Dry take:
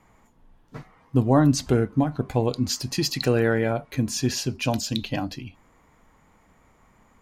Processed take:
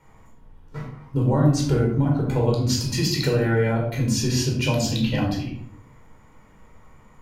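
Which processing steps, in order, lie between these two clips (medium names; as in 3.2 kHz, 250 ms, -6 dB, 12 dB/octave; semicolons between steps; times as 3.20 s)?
compression, threshold -21 dBFS, peak gain reduction 8.5 dB; simulated room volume 1000 m³, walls furnished, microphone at 4.6 m; trim -2 dB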